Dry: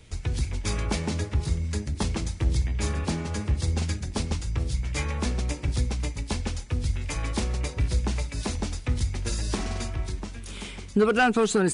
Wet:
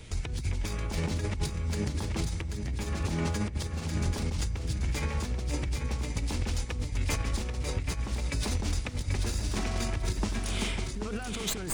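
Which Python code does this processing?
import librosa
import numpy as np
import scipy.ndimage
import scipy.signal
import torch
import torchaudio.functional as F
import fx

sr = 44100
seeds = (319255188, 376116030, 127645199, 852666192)

p1 = fx.tracing_dist(x, sr, depth_ms=0.042)
p2 = fx.over_compress(p1, sr, threshold_db=-32.0, ratio=-1.0)
y = p2 + fx.echo_feedback(p2, sr, ms=785, feedback_pct=23, wet_db=-6.0, dry=0)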